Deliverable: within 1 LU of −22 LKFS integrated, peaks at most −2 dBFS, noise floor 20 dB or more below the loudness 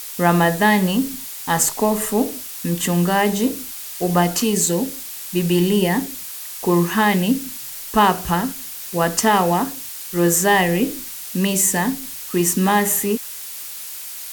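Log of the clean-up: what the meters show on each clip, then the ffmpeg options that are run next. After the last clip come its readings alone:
background noise floor −33 dBFS; target noise floor −40 dBFS; integrated loudness −19.5 LKFS; sample peak −3.0 dBFS; target loudness −22.0 LKFS
→ -af "afftdn=noise_reduction=7:noise_floor=-33"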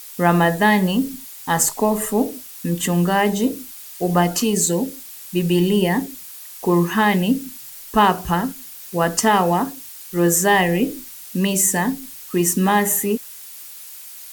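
background noise floor −38 dBFS; target noise floor −39 dBFS
→ -af "afftdn=noise_reduction=6:noise_floor=-38"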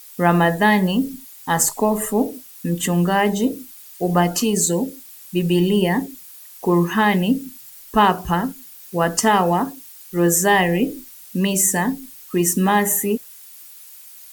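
background noise floor −42 dBFS; integrated loudness −19.0 LKFS; sample peak −3.0 dBFS; target loudness −22.0 LKFS
→ -af "volume=-3dB"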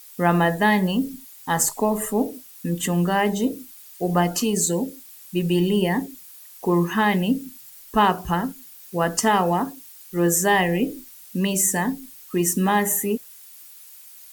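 integrated loudness −22.0 LKFS; sample peak −6.0 dBFS; background noise floor −45 dBFS

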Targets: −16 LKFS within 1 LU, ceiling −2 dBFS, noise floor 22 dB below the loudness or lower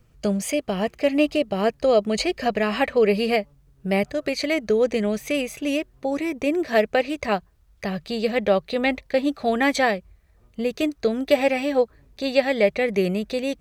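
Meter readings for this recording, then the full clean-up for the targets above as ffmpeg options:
integrated loudness −23.0 LKFS; sample peak −5.5 dBFS; target loudness −16.0 LKFS
→ -af "volume=7dB,alimiter=limit=-2dB:level=0:latency=1"

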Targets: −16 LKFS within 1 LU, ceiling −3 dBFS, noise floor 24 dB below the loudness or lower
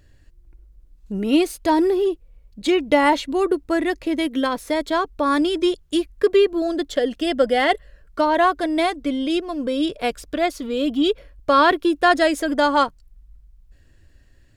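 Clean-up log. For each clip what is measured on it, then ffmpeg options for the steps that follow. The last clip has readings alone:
integrated loudness −20.5 LKFS; sample peak −3.0 dBFS; target loudness −16.0 LKFS
→ -af "volume=4.5dB,alimiter=limit=-3dB:level=0:latency=1"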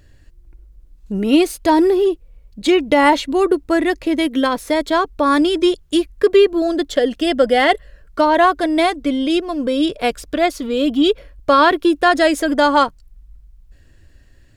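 integrated loudness −16.5 LKFS; sample peak −3.0 dBFS; background noise floor −49 dBFS

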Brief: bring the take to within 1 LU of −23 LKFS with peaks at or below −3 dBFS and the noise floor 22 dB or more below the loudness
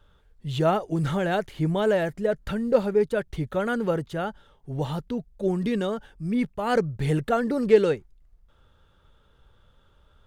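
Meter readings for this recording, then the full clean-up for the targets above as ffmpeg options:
integrated loudness −25.5 LKFS; sample peak −6.0 dBFS; target loudness −23.0 LKFS
→ -af "volume=2.5dB"

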